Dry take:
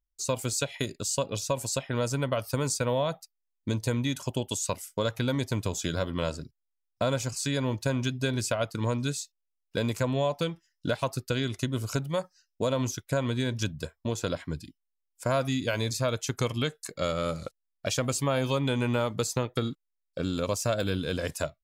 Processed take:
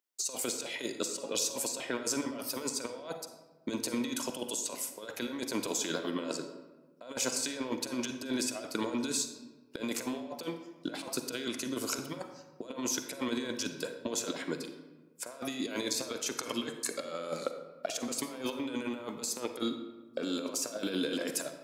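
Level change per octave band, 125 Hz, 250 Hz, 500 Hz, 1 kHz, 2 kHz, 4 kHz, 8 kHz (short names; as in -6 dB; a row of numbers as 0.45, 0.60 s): -21.5, -4.0, -8.0, -7.5, -5.5, -2.5, 0.0 dB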